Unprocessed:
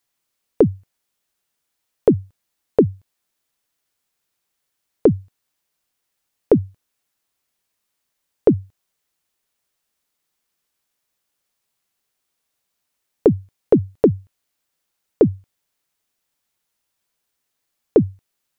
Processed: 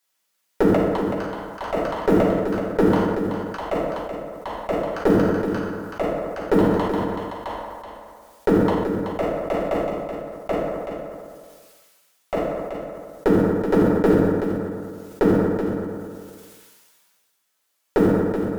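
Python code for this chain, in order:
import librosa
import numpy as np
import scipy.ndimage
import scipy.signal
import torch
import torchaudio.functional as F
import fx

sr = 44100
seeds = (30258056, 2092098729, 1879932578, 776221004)

y = fx.block_float(x, sr, bits=7)
y = fx.highpass(y, sr, hz=560.0, slope=6)
y = fx.clip_asym(y, sr, top_db=-19.5, bottom_db=-11.0)
y = fx.echo_pitch(y, sr, ms=341, semitones=7, count=3, db_per_echo=-6.0)
y = y + 10.0 ** (-8.0 / 20.0) * np.pad(y, (int(378 * sr / 1000.0), 0))[:len(y)]
y = fx.rev_fdn(y, sr, rt60_s=1.2, lf_ratio=0.9, hf_ratio=0.6, size_ms=31.0, drr_db=-4.0)
y = fx.sustainer(y, sr, db_per_s=28.0)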